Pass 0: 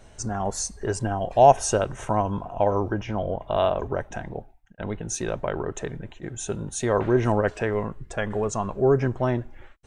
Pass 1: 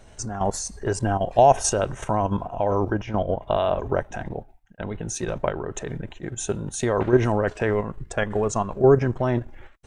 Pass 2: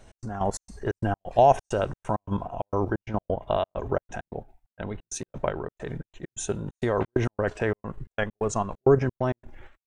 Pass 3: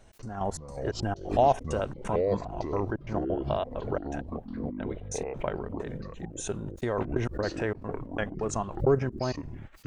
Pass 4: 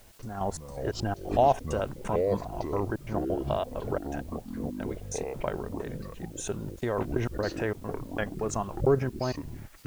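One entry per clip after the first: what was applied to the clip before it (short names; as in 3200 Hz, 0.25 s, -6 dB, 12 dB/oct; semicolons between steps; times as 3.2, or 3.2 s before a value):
level quantiser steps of 9 dB; gain +5.5 dB
step gate "x.xxx.xx." 132 bpm -60 dB; gain -2.5 dB
echoes that change speed 0.194 s, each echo -6 st, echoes 3, each echo -6 dB; backwards sustainer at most 140 dB/s; gain -4.5 dB
requantised 10-bit, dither triangular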